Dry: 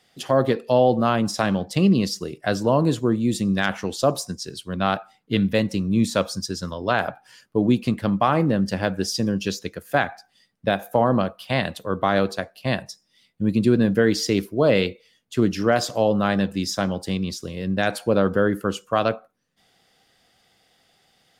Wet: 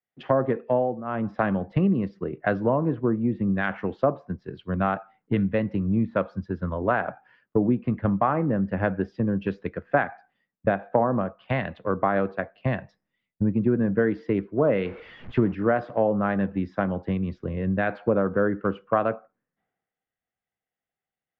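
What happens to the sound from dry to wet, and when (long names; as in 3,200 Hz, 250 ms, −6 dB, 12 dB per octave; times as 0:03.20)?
0:00.60–0:01.47: duck −15 dB, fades 0.43 s linear
0:14.85–0:15.55: converter with a step at zero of −33 dBFS
whole clip: downward compressor 4 to 1, threshold −29 dBFS; low-pass filter 2,000 Hz 24 dB per octave; multiband upward and downward expander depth 100%; level +7.5 dB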